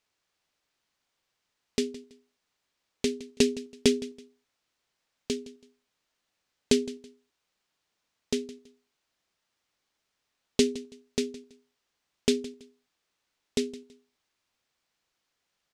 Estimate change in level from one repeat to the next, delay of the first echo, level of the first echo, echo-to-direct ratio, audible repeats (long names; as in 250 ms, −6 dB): −11.5 dB, 164 ms, −18.0 dB, −17.5 dB, 2